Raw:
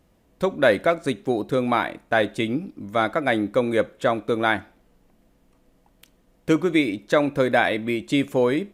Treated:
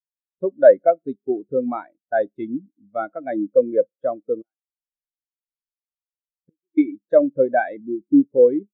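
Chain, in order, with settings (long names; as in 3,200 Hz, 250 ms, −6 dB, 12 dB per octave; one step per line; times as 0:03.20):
0:04.41–0:06.78: gate with flip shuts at −16 dBFS, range −28 dB
0:07.80–0:08.38: Butterworth low-pass 1,300 Hz
every bin expanded away from the loudest bin 2.5 to 1
level +3.5 dB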